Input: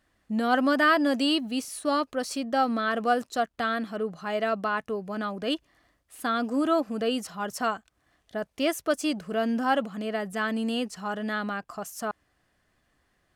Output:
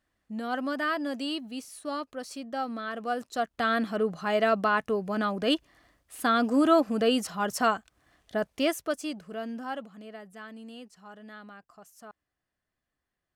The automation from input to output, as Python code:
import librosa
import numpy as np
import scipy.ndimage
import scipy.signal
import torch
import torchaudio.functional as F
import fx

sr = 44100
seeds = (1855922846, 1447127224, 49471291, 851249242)

y = fx.gain(x, sr, db=fx.line((3.02, -8.0), (3.79, 3.0), (8.46, 3.0), (9.03, -6.5), (10.5, -16.0)))